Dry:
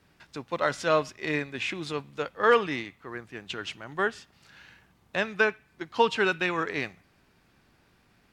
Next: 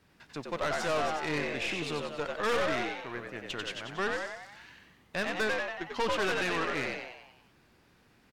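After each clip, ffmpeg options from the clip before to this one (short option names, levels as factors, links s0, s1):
-filter_complex "[0:a]asplit=8[s0][s1][s2][s3][s4][s5][s6][s7];[s1]adelay=93,afreqshift=81,volume=0.631[s8];[s2]adelay=186,afreqshift=162,volume=0.335[s9];[s3]adelay=279,afreqshift=243,volume=0.178[s10];[s4]adelay=372,afreqshift=324,volume=0.0944[s11];[s5]adelay=465,afreqshift=405,volume=0.0495[s12];[s6]adelay=558,afreqshift=486,volume=0.0263[s13];[s7]adelay=651,afreqshift=567,volume=0.014[s14];[s0][s8][s9][s10][s11][s12][s13][s14]amix=inputs=8:normalize=0,aeval=exprs='(tanh(20*val(0)+0.5)-tanh(0.5))/20':c=same"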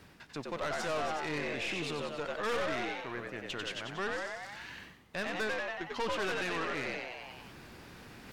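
-af "alimiter=level_in=1.41:limit=0.0631:level=0:latency=1:release=17,volume=0.708,areverse,acompressor=mode=upward:threshold=0.0126:ratio=2.5,areverse"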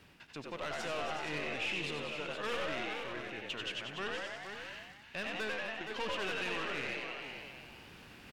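-af "equalizer=f=2800:w=2.6:g=7.5,aecho=1:1:79|469:0.299|0.398,volume=0.562"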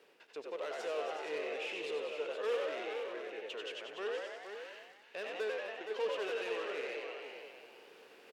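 -af "highpass=f=450:t=q:w=4.6,volume=0.501"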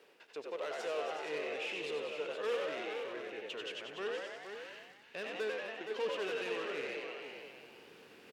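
-af "asubboost=boost=5.5:cutoff=210,volume=1.19"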